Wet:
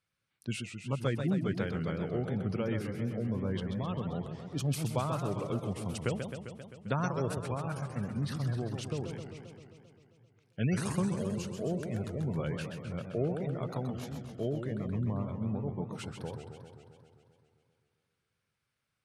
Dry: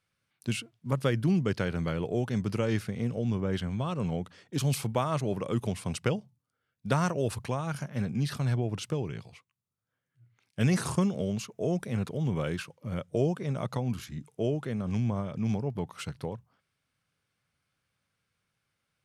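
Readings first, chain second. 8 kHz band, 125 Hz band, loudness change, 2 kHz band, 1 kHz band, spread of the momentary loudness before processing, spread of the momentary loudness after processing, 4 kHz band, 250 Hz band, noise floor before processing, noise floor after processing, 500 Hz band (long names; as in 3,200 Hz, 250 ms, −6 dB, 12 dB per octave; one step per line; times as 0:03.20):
−5.0 dB, −3.5 dB, −3.5 dB, −4.5 dB, −4.0 dB, 9 LU, 10 LU, −5.0 dB, −3.5 dB, −83 dBFS, −83 dBFS, −3.5 dB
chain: gate on every frequency bin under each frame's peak −30 dB strong
feedback echo with a swinging delay time 132 ms, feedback 70%, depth 188 cents, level −7 dB
level −5 dB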